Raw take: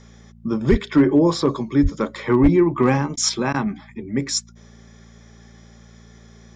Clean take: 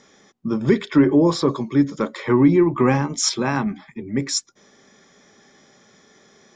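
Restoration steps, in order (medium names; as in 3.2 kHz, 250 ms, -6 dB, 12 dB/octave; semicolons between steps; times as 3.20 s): clip repair -7 dBFS; de-hum 57 Hz, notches 4; de-plosive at 0.70/1.82/2.42 s; interpolate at 3.16/3.53 s, 10 ms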